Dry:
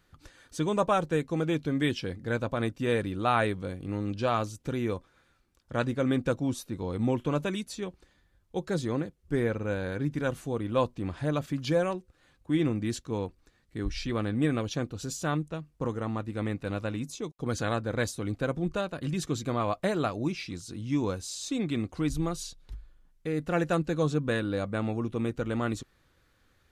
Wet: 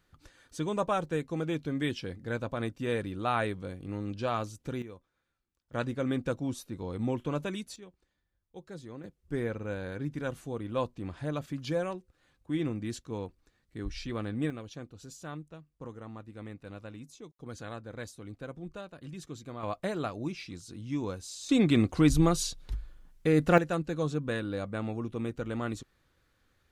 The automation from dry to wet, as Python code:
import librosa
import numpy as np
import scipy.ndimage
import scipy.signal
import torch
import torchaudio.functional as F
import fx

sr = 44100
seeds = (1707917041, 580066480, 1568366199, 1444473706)

y = fx.gain(x, sr, db=fx.steps((0.0, -4.0), (4.82, -15.5), (5.73, -4.0), (7.76, -14.5), (9.04, -5.0), (14.5, -12.0), (19.63, -5.0), (21.49, 6.5), (23.58, -4.0)))